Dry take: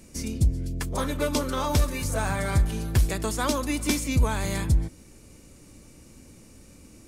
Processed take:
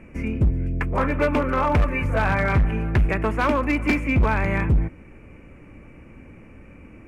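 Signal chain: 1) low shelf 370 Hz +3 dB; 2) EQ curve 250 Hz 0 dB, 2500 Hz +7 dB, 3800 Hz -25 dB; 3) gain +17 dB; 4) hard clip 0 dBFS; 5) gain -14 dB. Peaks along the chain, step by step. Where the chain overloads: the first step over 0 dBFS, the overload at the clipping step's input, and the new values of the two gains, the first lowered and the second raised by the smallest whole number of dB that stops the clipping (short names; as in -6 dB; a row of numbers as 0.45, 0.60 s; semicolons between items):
-10.5, -10.0, +7.0, 0.0, -14.0 dBFS; step 3, 7.0 dB; step 3 +10 dB, step 5 -7 dB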